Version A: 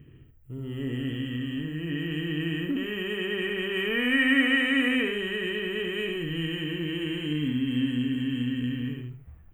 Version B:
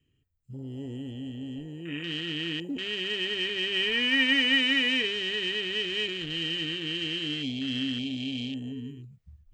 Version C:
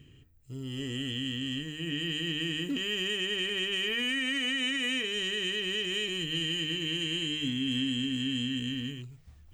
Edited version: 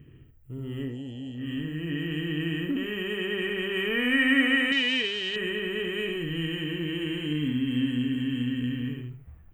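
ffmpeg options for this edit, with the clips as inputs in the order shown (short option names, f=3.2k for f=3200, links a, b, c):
-filter_complex "[1:a]asplit=2[a][b];[0:a]asplit=3[c][d][e];[c]atrim=end=0.97[f];[a]atrim=start=0.81:end=1.5[g];[d]atrim=start=1.34:end=4.722[h];[b]atrim=start=4.718:end=5.362[i];[e]atrim=start=5.358[j];[f][g]acrossfade=d=0.16:c1=tri:c2=tri[k];[k][h]acrossfade=d=0.16:c1=tri:c2=tri[l];[l][i]acrossfade=d=0.004:c1=hsin:c2=hsin[m];[m][j]acrossfade=d=0.004:c1=hsin:c2=hsin"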